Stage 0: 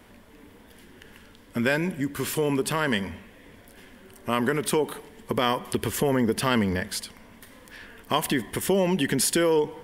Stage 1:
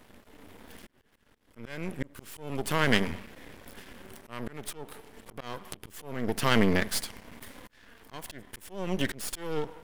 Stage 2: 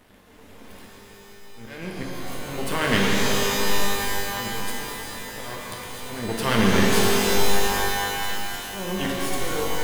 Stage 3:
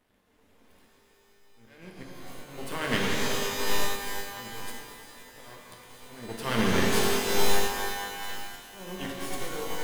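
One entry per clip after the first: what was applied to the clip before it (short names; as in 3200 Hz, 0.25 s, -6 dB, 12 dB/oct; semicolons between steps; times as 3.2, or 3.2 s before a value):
AGC gain up to 6 dB; half-wave rectifier; auto swell 0.655 s
shimmer reverb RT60 3.6 s, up +12 st, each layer -2 dB, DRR -3 dB
notches 50/100/150/200 Hz; upward expander 1.5:1, over -38 dBFS; gain -2.5 dB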